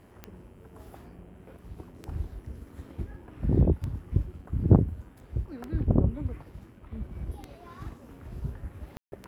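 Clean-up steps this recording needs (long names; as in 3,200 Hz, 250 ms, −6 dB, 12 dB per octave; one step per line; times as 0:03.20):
click removal
hum removal 91.7 Hz, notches 35
ambience match 0:08.97–0:09.12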